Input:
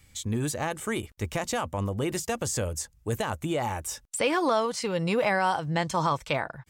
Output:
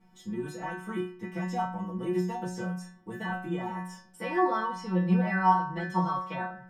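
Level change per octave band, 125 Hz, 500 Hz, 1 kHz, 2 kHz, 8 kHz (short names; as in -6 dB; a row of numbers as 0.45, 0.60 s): -1.5, -6.0, +0.5, -3.5, -19.5 dB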